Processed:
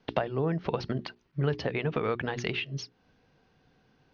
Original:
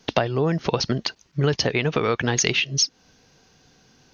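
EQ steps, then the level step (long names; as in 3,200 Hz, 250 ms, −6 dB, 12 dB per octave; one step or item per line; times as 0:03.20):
high-frequency loss of the air 260 metres
high-shelf EQ 5,000 Hz −4.5 dB
mains-hum notches 60/120/180/240/300/360/420 Hz
−6.0 dB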